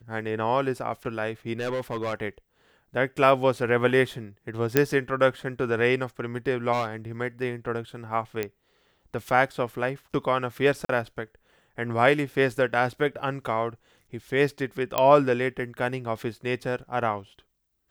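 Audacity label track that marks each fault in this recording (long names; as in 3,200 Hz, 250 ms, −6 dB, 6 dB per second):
1.590000	2.140000	clipping −24.5 dBFS
4.770000	4.770000	click −5 dBFS
6.720000	6.880000	clipping −21.5 dBFS
8.430000	8.430000	click −14 dBFS
10.850000	10.890000	drop-out 43 ms
14.980000	14.980000	click −8 dBFS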